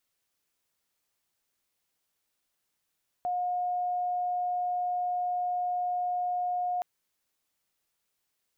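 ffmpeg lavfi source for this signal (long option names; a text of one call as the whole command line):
ffmpeg -f lavfi -i "sine=frequency=718:duration=3.57:sample_rate=44100,volume=-8.94dB" out.wav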